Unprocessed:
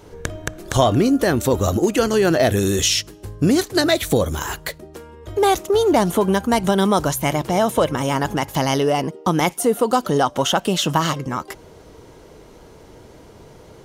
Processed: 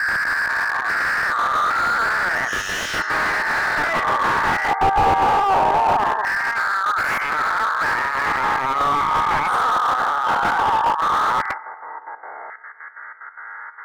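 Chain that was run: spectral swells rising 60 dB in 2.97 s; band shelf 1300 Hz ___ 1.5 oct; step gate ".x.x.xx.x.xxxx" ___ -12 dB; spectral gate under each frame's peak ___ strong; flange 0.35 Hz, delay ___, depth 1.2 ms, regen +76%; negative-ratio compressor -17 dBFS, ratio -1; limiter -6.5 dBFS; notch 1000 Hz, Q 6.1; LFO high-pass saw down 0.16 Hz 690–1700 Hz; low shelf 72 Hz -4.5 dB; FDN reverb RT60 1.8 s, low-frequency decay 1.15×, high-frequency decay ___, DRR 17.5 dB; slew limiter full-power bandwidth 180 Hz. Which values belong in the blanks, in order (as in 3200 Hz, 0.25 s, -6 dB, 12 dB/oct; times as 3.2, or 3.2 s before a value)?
+15.5 dB, 184 bpm, -20 dB, 0.6 ms, 0.55×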